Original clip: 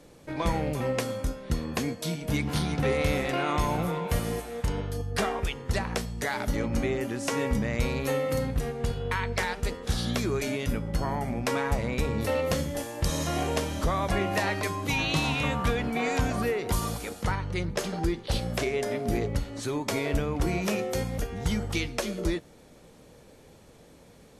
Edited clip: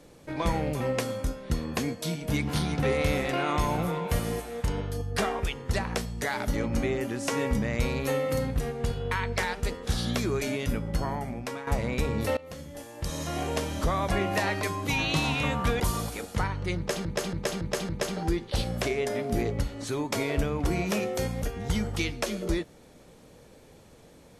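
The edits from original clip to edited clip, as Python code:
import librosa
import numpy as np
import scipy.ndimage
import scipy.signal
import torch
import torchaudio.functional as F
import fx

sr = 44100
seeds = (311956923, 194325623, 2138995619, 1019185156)

y = fx.edit(x, sr, fx.fade_out_to(start_s=10.96, length_s=0.71, floor_db=-12.0),
    fx.fade_in_from(start_s=12.37, length_s=1.45, floor_db=-20.5),
    fx.cut(start_s=15.8, length_s=0.88),
    fx.repeat(start_s=17.65, length_s=0.28, count=5), tone=tone)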